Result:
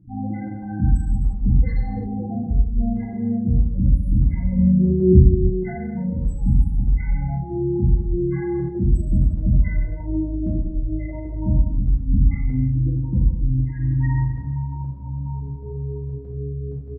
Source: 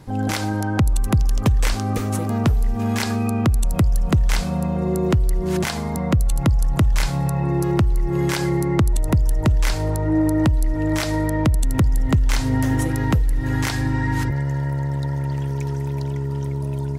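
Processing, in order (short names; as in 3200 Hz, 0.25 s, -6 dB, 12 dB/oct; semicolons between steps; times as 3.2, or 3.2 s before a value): 4.56–5.19 low shelf 300 Hz +9 dB; loudest bins only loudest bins 8; chopper 1.6 Hz, depth 60%, duty 75%; speakerphone echo 0.2 s, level -22 dB; non-linear reverb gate 0.38 s falling, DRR -7 dB; gain -8 dB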